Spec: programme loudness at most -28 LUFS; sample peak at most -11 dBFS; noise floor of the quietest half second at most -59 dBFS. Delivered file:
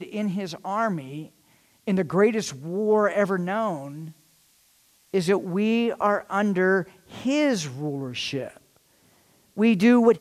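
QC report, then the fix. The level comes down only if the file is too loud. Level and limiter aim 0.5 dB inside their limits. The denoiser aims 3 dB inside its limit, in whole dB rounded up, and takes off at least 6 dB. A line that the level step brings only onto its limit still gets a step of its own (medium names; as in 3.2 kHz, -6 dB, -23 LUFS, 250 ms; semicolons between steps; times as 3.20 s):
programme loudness -24.0 LUFS: fail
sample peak -7.0 dBFS: fail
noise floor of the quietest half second -61 dBFS: pass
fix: trim -4.5 dB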